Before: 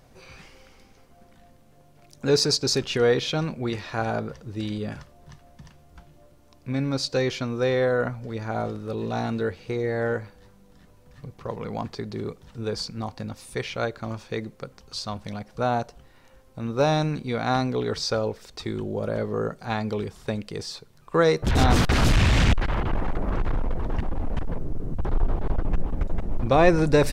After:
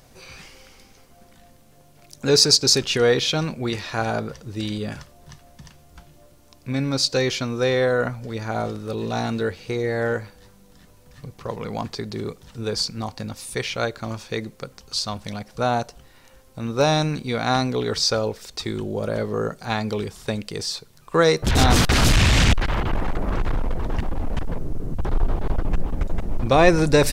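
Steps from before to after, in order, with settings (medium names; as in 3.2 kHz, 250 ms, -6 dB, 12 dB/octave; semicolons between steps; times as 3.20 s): treble shelf 3.1 kHz +8.5 dB; trim +2 dB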